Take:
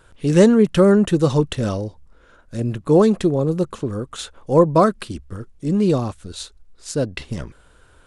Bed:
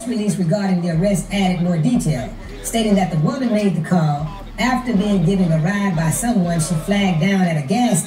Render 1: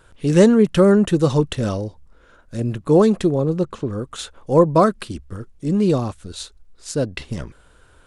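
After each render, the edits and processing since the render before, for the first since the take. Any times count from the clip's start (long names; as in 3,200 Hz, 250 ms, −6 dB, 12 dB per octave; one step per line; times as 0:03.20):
0:03.41–0:03.98: high-frequency loss of the air 57 metres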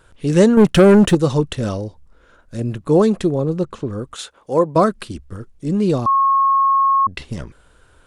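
0:00.57–0:01.15: leveller curve on the samples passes 2
0:04.14–0:04.76: high-pass filter 360 Hz 6 dB per octave
0:06.06–0:07.07: beep over 1,090 Hz −11.5 dBFS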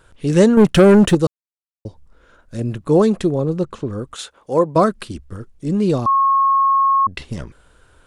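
0:01.27–0:01.85: silence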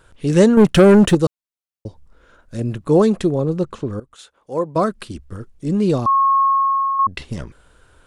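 0:04.00–0:05.38: fade in, from −16.5 dB
0:06.41–0:06.99: fade out, to −6.5 dB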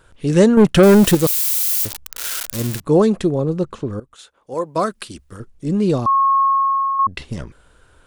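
0:00.83–0:02.80: spike at every zero crossing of −11.5 dBFS
0:04.54–0:05.40: spectral tilt +2 dB per octave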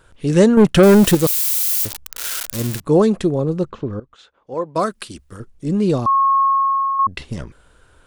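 0:03.70–0:04.76: high-frequency loss of the air 150 metres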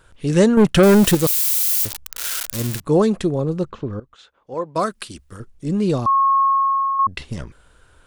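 parametric band 350 Hz −2.5 dB 2.6 octaves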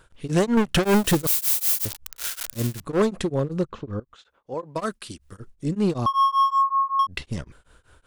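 hard clipping −14.5 dBFS, distortion −10 dB
tremolo along a rectified sine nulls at 5.3 Hz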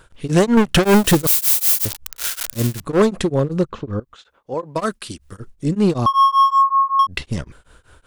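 level +6 dB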